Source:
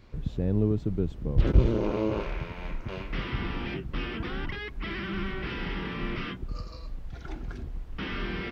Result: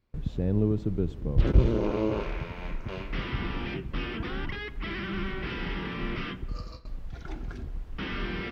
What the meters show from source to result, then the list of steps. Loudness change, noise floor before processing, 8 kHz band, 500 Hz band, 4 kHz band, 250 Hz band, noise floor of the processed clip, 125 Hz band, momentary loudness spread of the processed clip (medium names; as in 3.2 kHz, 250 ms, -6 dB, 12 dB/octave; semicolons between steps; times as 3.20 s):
0.0 dB, -42 dBFS, no reading, 0.0 dB, 0.0 dB, 0.0 dB, -42 dBFS, 0.0 dB, 14 LU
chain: gate with hold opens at -31 dBFS; filtered feedback delay 90 ms, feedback 70%, low-pass 4.5 kHz, level -20.5 dB